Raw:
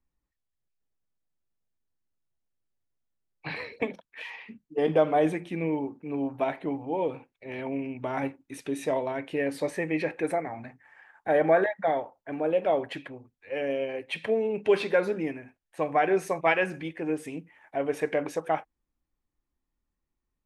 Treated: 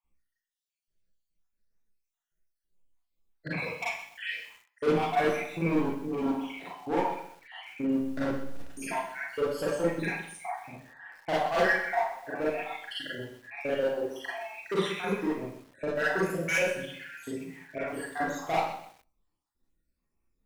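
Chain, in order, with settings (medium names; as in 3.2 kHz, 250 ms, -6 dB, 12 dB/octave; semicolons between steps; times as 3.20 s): random holes in the spectrogram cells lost 73%; 7.91–8.77 s: hysteresis with a dead band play -33.5 dBFS; 15.28–15.94 s: resonant high shelf 2 kHz -9.5 dB, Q 1.5; hard clipper -28.5 dBFS, distortion -7 dB; Schroeder reverb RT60 0.49 s, combs from 33 ms, DRR -7 dB; bit-crushed delay 127 ms, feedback 35%, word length 8-bit, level -11.5 dB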